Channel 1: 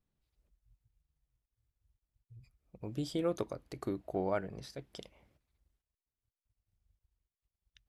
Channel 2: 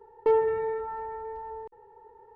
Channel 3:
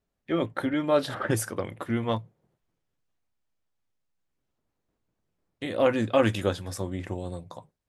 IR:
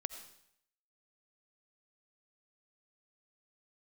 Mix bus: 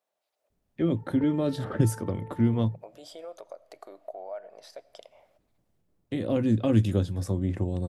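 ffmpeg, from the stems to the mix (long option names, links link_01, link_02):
-filter_complex "[0:a]alimiter=level_in=7dB:limit=-24dB:level=0:latency=1:release=168,volume=-7dB,highpass=frequency=630:width_type=q:width=4.9,volume=3dB,asplit=3[link_01][link_02][link_03];[link_02]volume=-17dB[link_04];[1:a]adelay=950,volume=-3dB[link_05];[2:a]tiltshelf=frequency=680:gain=6.5,acrossover=split=320|3000[link_06][link_07][link_08];[link_07]acompressor=threshold=-38dB:ratio=2.5[link_09];[link_06][link_09][link_08]amix=inputs=3:normalize=0,adelay=500,volume=1dB[link_10];[link_03]apad=whole_len=146125[link_11];[link_05][link_11]sidechaincompress=threshold=-59dB:ratio=8:attack=16:release=390[link_12];[link_01][link_12]amix=inputs=2:normalize=0,acompressor=threshold=-49dB:ratio=2,volume=0dB[link_13];[3:a]atrim=start_sample=2205[link_14];[link_04][link_14]afir=irnorm=-1:irlink=0[link_15];[link_10][link_13][link_15]amix=inputs=3:normalize=0"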